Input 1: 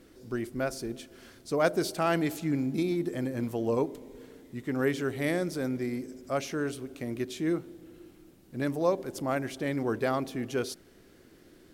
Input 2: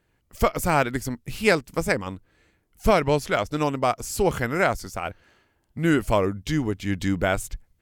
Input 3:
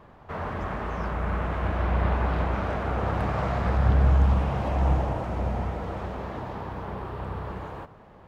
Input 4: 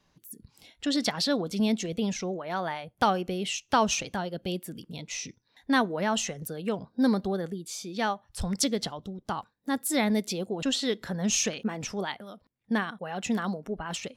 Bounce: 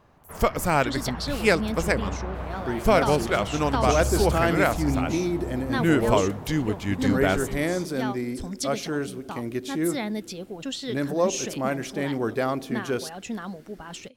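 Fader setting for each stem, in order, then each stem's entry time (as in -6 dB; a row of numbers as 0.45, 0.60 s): +3.0, -1.0, -7.5, -4.5 dB; 2.35, 0.00, 0.00, 0.00 s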